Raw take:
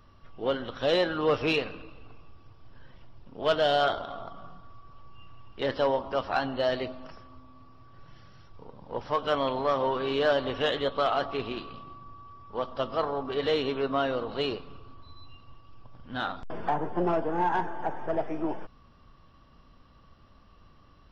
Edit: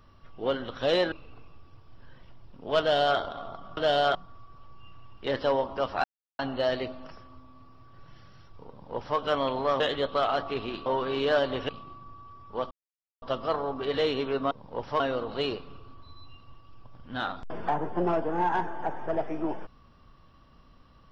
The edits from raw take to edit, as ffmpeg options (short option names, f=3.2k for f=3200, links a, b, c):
-filter_complex "[0:a]asplit=11[a][b][c][d][e][f][g][h][i][j][k];[a]atrim=end=1.122[l];[b]atrim=start=1.848:end=4.502[m];[c]atrim=start=3.528:end=3.912[n];[d]atrim=start=4.498:end=6.39,asetpts=PTS-STARTPTS,afade=t=out:st=1.888:d=0.004:c=hsin,apad=pad_dur=0.35[o];[e]atrim=start=6.39:end=9.802,asetpts=PTS-STARTPTS,afade=t=in:d=0.004:c=hsin[p];[f]atrim=start=10.628:end=11.692[q];[g]atrim=start=9.798:end=10.632[r];[h]atrim=start=11.688:end=12.71,asetpts=PTS-STARTPTS,afade=t=out:st=1.018:d=0.004:c=hsin,apad=pad_dur=0.51[s];[i]atrim=start=12.71:end=14.002,asetpts=PTS-STARTPTS,afade=t=in:d=0.004:c=hsin[t];[j]atrim=start=8.688:end=9.182[u];[k]atrim=start=13.998[v];[l][m]acrossfade=d=0.004:c1=hsin:c2=hsin[w];[w][n]acrossfade=d=0.004:c1=hsin:c2=hsin[x];[o][p]concat=n=2:v=0:a=1[y];[x][y]acrossfade=d=0.004:c1=hsin:c2=hsin[z];[z][q]acrossfade=d=0.004:c1=hsin:c2=hsin[aa];[aa][r]acrossfade=d=0.004:c1=hsin:c2=hsin[ab];[s][t]concat=n=2:v=0:a=1[ac];[ab][ac]acrossfade=d=0.004:c1=hsin:c2=hsin[ad];[ad][u]acrossfade=d=0.004:c1=hsin:c2=hsin[ae];[ae][v]acrossfade=d=0.004:c1=hsin:c2=hsin"